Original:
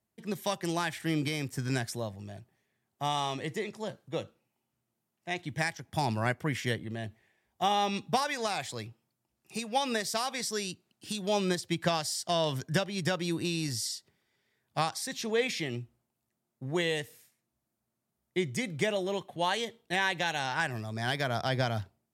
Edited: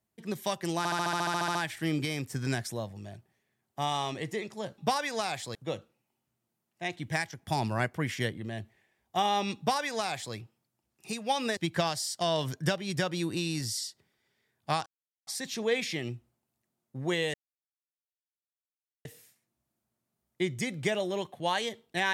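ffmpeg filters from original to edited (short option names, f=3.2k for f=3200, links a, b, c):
-filter_complex "[0:a]asplit=17[a][b][c][d][e][f][g][h][i][j][k][l][m][n][o][p][q];[a]atrim=end=0.852[r];[b]atrim=start=0.778:end=0.852[s];[c]atrim=start=0.778:end=0.852[t];[d]atrim=start=0.778:end=0.852[u];[e]atrim=start=0.778:end=0.852[v];[f]atrim=start=0.778:end=0.852[w];[g]atrim=start=0.778:end=0.852[x];[h]atrim=start=0.778:end=0.852[y];[i]atrim=start=0.778:end=0.852[z];[j]atrim=start=0.778:end=0.852[aa];[k]atrim=start=0.778:end=0.852[ab];[l]atrim=start=0.778:end=4.012[ac];[m]atrim=start=8.038:end=8.812[ad];[n]atrim=start=4.008:end=10.032[ae];[o]atrim=start=11.648:end=14.94,asetpts=PTS-STARTPTS,afade=t=out:st=3.288:d=0.004:c=hsin,apad=pad_dur=0.41[af];[p]atrim=start=14.94:end=17.01,asetpts=PTS-STARTPTS,afade=t=in:d=0.004:c=hsin,afade=t=out:st=2.066:d=0.004:c=hsin,apad=pad_dur=1.71[ag];[q]atrim=start=17.01,asetpts=PTS-STARTPTS,afade=t=in:d=0.004:c=hsin[ah];[r][s]acrossfade=d=0.004:c1=hsin:c2=hsin[ai];[ai][t]acrossfade=d=0.004:c1=hsin:c2=hsin[aj];[aj][u]acrossfade=d=0.004:c1=hsin:c2=hsin[ak];[ak][v]acrossfade=d=0.004:c1=hsin:c2=hsin[al];[al][w]acrossfade=d=0.004:c1=hsin:c2=hsin[am];[am][x]acrossfade=d=0.004:c1=hsin:c2=hsin[an];[an][y]acrossfade=d=0.004:c1=hsin:c2=hsin[ao];[ao][z]acrossfade=d=0.004:c1=hsin:c2=hsin[ap];[ap][aa]acrossfade=d=0.004:c1=hsin:c2=hsin[aq];[aq][ab]acrossfade=d=0.004:c1=hsin:c2=hsin[ar];[ar][ac]acrossfade=d=0.004:c1=hsin:c2=hsin[as];[as][ad]acrossfade=d=0.004:c1=hsin:c2=hsin[at];[at][ae]acrossfade=d=0.004:c1=hsin:c2=hsin[au];[af][ag][ah]concat=n=3:v=0:a=1[av];[au][av]acrossfade=d=0.004:c1=hsin:c2=hsin"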